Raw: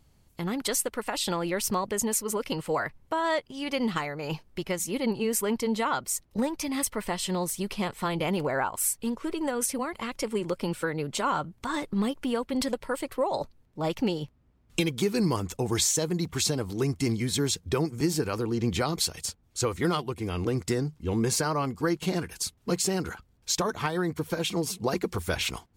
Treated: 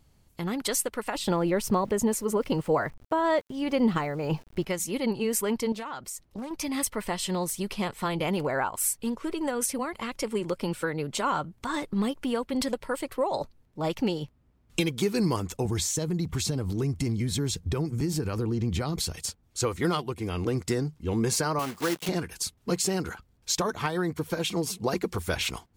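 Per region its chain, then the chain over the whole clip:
1.15–4.65 s: tilt shelf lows +5.5 dB, about 1.3 kHz + small samples zeroed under -49.5 dBFS
5.72–6.51 s: compression 4:1, threshold -34 dBFS + loudspeaker Doppler distortion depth 0.4 ms
15.65–19.15 s: bass shelf 220 Hz +11.5 dB + compression 3:1, threshold -26 dBFS
21.59–22.09 s: block-companded coder 3-bit + high-pass 280 Hz 6 dB/octave
whole clip: none

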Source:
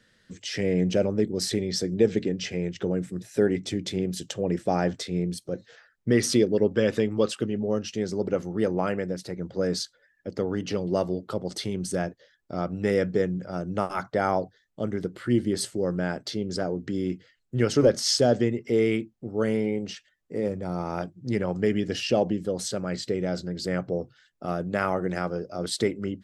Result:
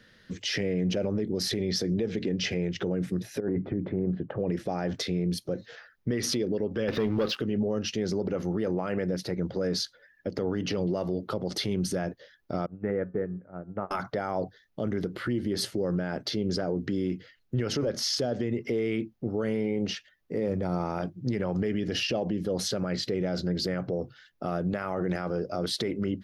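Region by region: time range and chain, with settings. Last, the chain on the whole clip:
3.40–4.40 s: low-pass 1.4 kHz 24 dB/octave + compressor with a negative ratio -27 dBFS
6.88–7.37 s: low-pass 5.1 kHz 24 dB/octave + waveshaping leveller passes 2
12.66–13.91 s: low-pass 1.8 kHz 24 dB/octave + de-hum 136.4 Hz, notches 13 + upward expansion 2.5:1, over -34 dBFS
whole clip: peaking EQ 7.9 kHz -15 dB 0.4 oct; compression, threshold -23 dBFS; peak limiter -25.5 dBFS; trim +5.5 dB

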